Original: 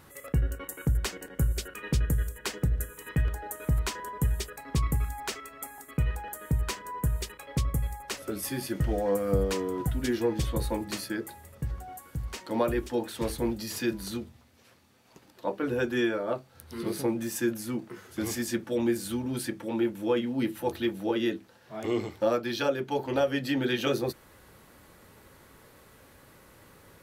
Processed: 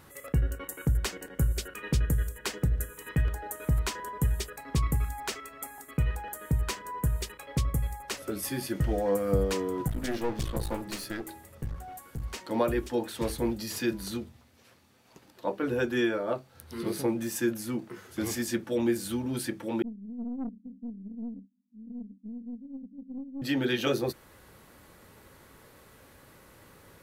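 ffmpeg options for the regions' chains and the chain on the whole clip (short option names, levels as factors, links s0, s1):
-filter_complex "[0:a]asettb=1/sr,asplit=3[s0][s1][s2];[s0]atrim=end=9.884[s3];[s1]atrim=start=9.88:end=12.23,asetpts=PTS-STARTPTS,afade=t=in:d=0.004:c=qsin,afade=t=out:st=2.346:d=0.004:c=qsin,bandreject=f=80.66:t=h:w=4,bandreject=f=161.32:t=h:w=4,bandreject=f=241.98:t=h:w=4,bandreject=f=322.64:t=h:w=4,bandreject=f=403.3:t=h:w=4,aeval=exprs='clip(val(0),-1,0.0112)':c=same[s4];[s2]atrim=start=12.226[s5];[s3][s4]acrossfade=d=0.004:c1=hsin:c2=qsin[s6];[s6][s5]acrossfade=d=0.004:c1=qsin:c2=hsin,asettb=1/sr,asplit=3[s7][s8][s9];[s7]atrim=end=19.824[s10];[s8]atrim=start=19.82:end=23.42,asetpts=PTS-STARTPTS,afade=t=in:d=0.004:c=qsin,afade=t=out:st=3.596:d=0.004:c=qsin,acrusher=bits=9:dc=4:mix=0:aa=0.000001,asuperpass=centerf=230:order=20:qfactor=2.6,aeval=exprs='(tanh(31.6*val(0)+0.35)-tanh(0.35))/31.6':c=same[s11];[s9]atrim=start=23.416[s12];[s10][s11]acrossfade=d=0.004:c1=hsin:c2=qsin[s13];[s13][s12]acrossfade=d=0.004:c1=qsin:c2=hsin"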